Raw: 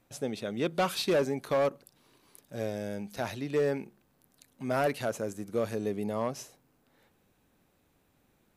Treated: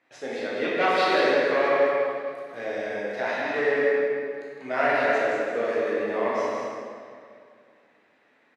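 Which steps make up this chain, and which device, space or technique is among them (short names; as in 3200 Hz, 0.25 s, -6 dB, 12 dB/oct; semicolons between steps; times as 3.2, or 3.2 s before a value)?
station announcement (BPF 410–3600 Hz; bell 1900 Hz +11 dB 0.5 oct; loudspeakers at several distances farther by 54 m -10 dB, 65 m -6 dB; reverb RT60 2.2 s, pre-delay 13 ms, DRR -6 dB)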